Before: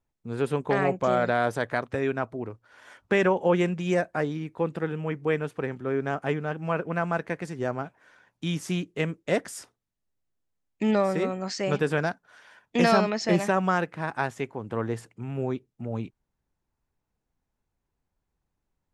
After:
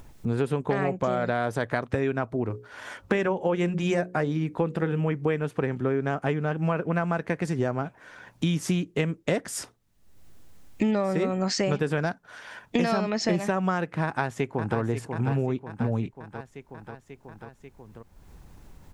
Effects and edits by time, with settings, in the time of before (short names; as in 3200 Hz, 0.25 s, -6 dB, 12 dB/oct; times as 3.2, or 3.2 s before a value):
2.44–5.01 notches 60/120/180/240/300/360/420/480/540 Hz
14.04–14.78 echo throw 0.54 s, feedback 55%, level -9 dB
whole clip: upward compressor, threshold -44 dBFS; low shelf 240 Hz +5.5 dB; compressor 6:1, threshold -31 dBFS; gain +8.5 dB